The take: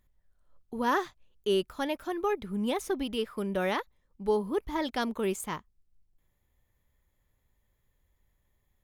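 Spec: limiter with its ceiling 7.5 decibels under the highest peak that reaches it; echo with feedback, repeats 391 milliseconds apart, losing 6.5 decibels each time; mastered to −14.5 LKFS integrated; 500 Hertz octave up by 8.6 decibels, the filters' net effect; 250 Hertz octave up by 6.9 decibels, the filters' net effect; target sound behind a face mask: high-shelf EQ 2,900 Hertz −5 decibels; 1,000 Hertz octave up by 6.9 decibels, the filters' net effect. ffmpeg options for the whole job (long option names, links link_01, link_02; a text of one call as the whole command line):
ffmpeg -i in.wav -af "equalizer=frequency=250:width_type=o:gain=6,equalizer=frequency=500:width_type=o:gain=8,equalizer=frequency=1000:width_type=o:gain=6,alimiter=limit=-16dB:level=0:latency=1,highshelf=frequency=2900:gain=-5,aecho=1:1:391|782|1173|1564|1955|2346:0.473|0.222|0.105|0.0491|0.0231|0.0109,volume=11.5dB" out.wav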